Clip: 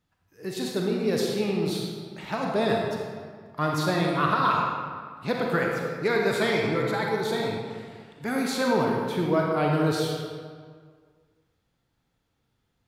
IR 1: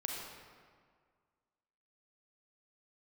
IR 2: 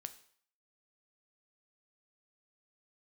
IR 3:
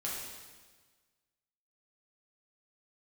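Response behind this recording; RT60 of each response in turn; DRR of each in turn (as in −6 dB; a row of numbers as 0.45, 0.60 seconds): 1; 1.9, 0.55, 1.4 seconds; −1.0, 9.5, −6.0 decibels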